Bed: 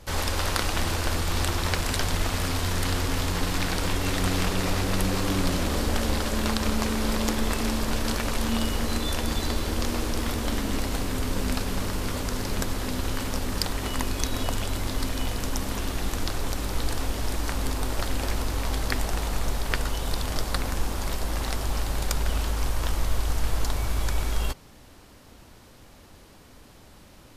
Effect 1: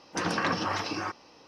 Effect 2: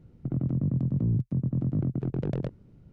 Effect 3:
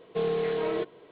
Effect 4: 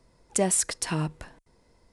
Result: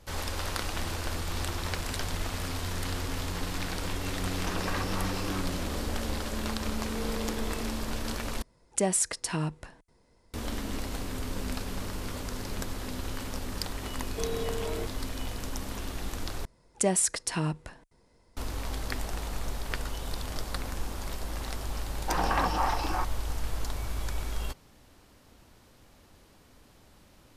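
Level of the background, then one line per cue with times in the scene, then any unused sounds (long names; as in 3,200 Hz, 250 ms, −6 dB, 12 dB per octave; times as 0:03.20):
bed −7 dB
0:04.30: mix in 1 −7.5 dB
0:06.79: mix in 3 −13 dB
0:08.42: overwrite with 4 −2.5 dB
0:14.02: mix in 3 −7 dB
0:16.45: overwrite with 4 −1.5 dB
0:21.93: mix in 1 −4.5 dB + parametric band 820 Hz +13 dB 0.7 octaves
not used: 2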